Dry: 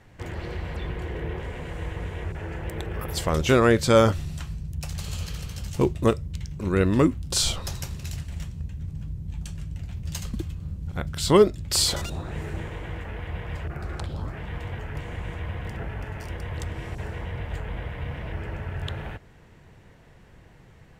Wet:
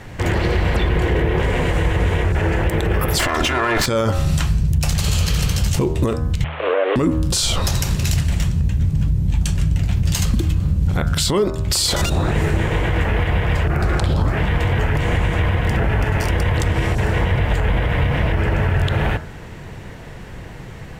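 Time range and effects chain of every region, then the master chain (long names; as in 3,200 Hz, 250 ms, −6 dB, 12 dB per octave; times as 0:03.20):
0:03.19–0:03.86: lower of the sound and its delayed copy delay 2.9 ms + parametric band 1,500 Hz +12.5 dB 2.2 octaves + compressor whose output falls as the input rises −24 dBFS
0:06.44–0:06.96: linear delta modulator 16 kbit/s, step −37 dBFS + high-pass filter 390 Hz 24 dB per octave + frequency shifter +100 Hz
whole clip: hum removal 78.54 Hz, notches 22; downward compressor 2.5 to 1, threshold −28 dBFS; boost into a limiter +25.5 dB; level −8 dB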